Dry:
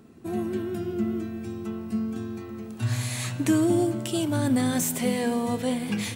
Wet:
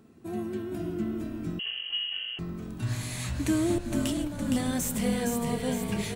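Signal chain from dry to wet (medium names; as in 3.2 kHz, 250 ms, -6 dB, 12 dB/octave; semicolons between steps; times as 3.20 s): 3.78–4.48 s: compressor with a negative ratio -29 dBFS, ratio -0.5; frequency-shifting echo 463 ms, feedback 55%, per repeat -48 Hz, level -5 dB; 1.59–2.39 s: frequency inversion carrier 3.1 kHz; trim -4.5 dB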